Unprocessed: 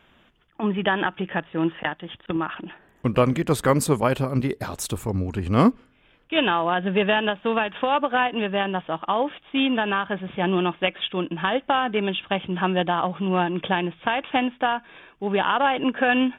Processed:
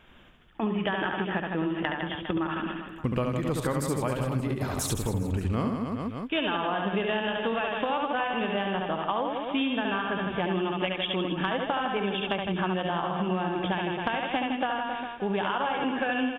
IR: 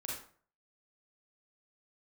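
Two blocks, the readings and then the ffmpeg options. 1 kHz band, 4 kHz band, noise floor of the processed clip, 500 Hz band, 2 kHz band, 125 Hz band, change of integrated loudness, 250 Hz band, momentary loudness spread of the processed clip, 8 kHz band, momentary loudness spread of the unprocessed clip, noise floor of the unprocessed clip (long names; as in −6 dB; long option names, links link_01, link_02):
−5.5 dB, −4.5 dB, −41 dBFS, −5.5 dB, −5.5 dB, −4.0 dB, −5.5 dB, −5.0 dB, 3 LU, −3.5 dB, 8 LU, −60 dBFS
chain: -af "lowshelf=frequency=62:gain=9.5,aecho=1:1:70|157.5|266.9|403.6|574.5:0.631|0.398|0.251|0.158|0.1,acompressor=threshold=-25dB:ratio=6"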